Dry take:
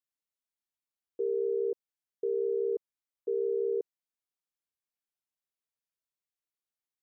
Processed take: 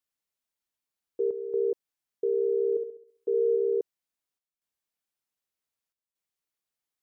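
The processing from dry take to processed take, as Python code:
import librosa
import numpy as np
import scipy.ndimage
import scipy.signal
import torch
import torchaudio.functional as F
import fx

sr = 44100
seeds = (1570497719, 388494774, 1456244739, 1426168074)

y = fx.chopper(x, sr, hz=0.65, depth_pct=65, duty_pct=85)
y = fx.room_flutter(y, sr, wall_m=11.5, rt60_s=0.55, at=(2.75, 3.55), fade=0.02)
y = y * librosa.db_to_amplitude(4.0)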